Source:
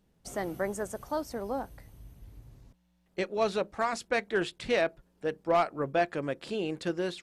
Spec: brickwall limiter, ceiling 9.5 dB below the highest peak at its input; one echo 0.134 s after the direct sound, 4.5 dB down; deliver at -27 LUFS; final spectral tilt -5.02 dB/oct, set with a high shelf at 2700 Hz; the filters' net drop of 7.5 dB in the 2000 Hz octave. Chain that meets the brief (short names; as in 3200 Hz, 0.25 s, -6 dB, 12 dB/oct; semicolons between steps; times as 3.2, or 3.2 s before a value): bell 2000 Hz -8.5 dB; high shelf 2700 Hz -3.5 dB; limiter -26 dBFS; echo 0.134 s -4.5 dB; gain +9 dB